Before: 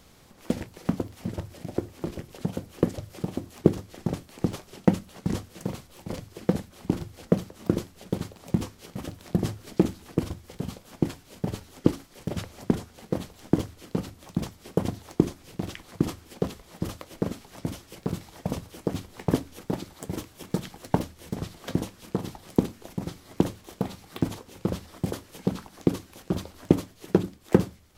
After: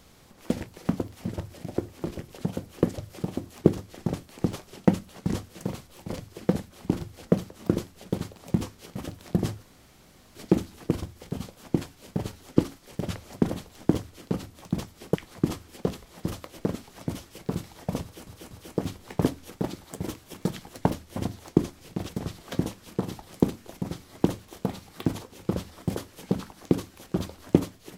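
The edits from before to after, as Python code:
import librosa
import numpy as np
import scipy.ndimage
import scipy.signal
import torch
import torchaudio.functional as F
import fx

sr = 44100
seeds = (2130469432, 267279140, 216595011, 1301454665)

y = fx.edit(x, sr, fx.insert_room_tone(at_s=9.63, length_s=0.72),
    fx.cut(start_s=12.78, length_s=0.36),
    fx.move(start_s=14.79, length_s=0.93, to_s=21.25),
    fx.stutter(start_s=18.6, slice_s=0.24, count=3), tone=tone)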